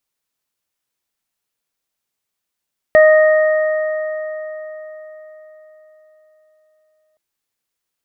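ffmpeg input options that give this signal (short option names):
-f lavfi -i "aevalsrc='0.562*pow(10,-3*t/4.48)*sin(2*PI*621*t)+0.075*pow(10,-3*t/4.22)*sin(2*PI*1242*t)+0.224*pow(10,-3*t/3.74)*sin(2*PI*1863*t)':d=4.22:s=44100"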